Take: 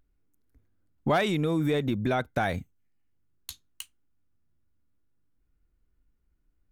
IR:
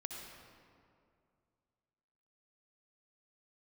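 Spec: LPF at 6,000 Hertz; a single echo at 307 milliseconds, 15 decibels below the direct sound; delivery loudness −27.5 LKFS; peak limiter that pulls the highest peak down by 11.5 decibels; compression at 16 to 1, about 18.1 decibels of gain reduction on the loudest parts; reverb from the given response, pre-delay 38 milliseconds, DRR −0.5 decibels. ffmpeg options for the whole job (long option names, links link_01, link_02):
-filter_complex "[0:a]lowpass=6000,acompressor=threshold=-40dB:ratio=16,alimiter=level_in=14dB:limit=-24dB:level=0:latency=1,volume=-14dB,aecho=1:1:307:0.178,asplit=2[link_01][link_02];[1:a]atrim=start_sample=2205,adelay=38[link_03];[link_02][link_03]afir=irnorm=-1:irlink=0,volume=2dB[link_04];[link_01][link_04]amix=inputs=2:normalize=0,volume=18dB"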